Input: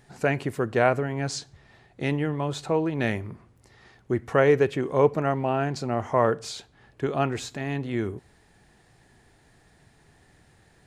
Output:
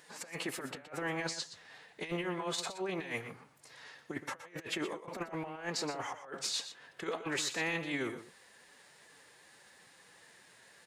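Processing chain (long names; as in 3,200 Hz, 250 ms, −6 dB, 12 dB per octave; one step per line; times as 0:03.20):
high-pass filter 1,300 Hz 6 dB per octave
compressor whose output falls as the input rises −38 dBFS, ratio −0.5
phase-vocoder pitch shift with formants kept +3 semitones
on a send: single-tap delay 121 ms −11.5 dB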